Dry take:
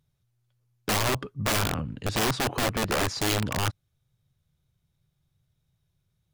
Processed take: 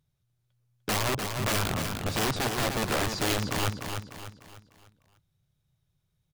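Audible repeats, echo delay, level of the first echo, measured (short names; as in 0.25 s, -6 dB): 4, 0.299 s, -6.0 dB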